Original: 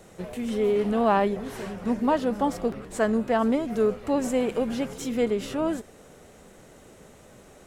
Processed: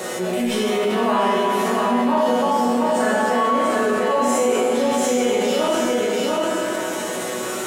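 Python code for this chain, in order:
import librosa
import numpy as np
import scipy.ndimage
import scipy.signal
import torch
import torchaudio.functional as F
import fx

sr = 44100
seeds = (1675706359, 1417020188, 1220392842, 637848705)

p1 = scipy.signal.sosfilt(scipy.signal.butter(2, 220.0, 'highpass', fs=sr, output='sos'), x)
p2 = fx.low_shelf(p1, sr, hz=340.0, db=-5.0)
p3 = fx.level_steps(p2, sr, step_db=17)
p4 = p2 + (p3 * 10.0 ** (1.0 / 20.0))
p5 = fx.resonator_bank(p4, sr, root=47, chord='fifth', decay_s=0.21)
p6 = p5 + fx.echo_single(p5, sr, ms=692, db=-4.5, dry=0)
p7 = fx.rev_schroeder(p6, sr, rt60_s=1.7, comb_ms=26, drr_db=-7.0)
p8 = fx.env_flatten(p7, sr, amount_pct=70)
y = p8 * 10.0 ** (6.0 / 20.0)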